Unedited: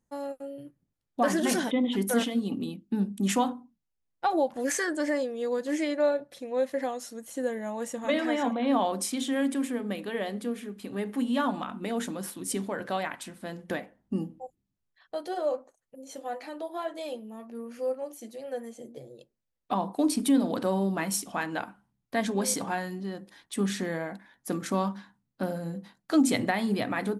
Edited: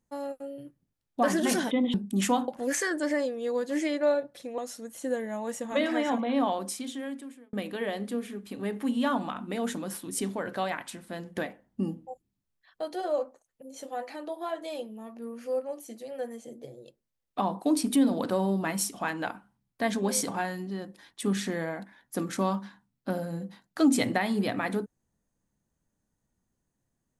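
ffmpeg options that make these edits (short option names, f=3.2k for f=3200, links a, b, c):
-filter_complex "[0:a]asplit=5[a][b][c][d][e];[a]atrim=end=1.942[f];[b]atrim=start=3.008:end=3.552[g];[c]atrim=start=4.448:end=6.552[h];[d]atrim=start=6.908:end=9.86,asetpts=PTS-STARTPTS,afade=t=out:st=1.642:d=1.31[i];[e]atrim=start=9.86,asetpts=PTS-STARTPTS,afade=t=in:d=0.004:c=hsin[j];[f][g]acrossfade=d=0.004:c1=hsin:c2=hsin[k];[k][h]acrossfade=d=0.004:c1=hsin:c2=hsin[l];[i][j]concat=n=2:v=0:a=1[m];[l][m]acrossfade=d=0.004:c1=hsin:c2=hsin"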